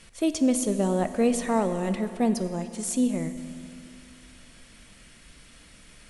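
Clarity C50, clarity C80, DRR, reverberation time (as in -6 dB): 10.0 dB, 11.0 dB, 9.0 dB, 2.7 s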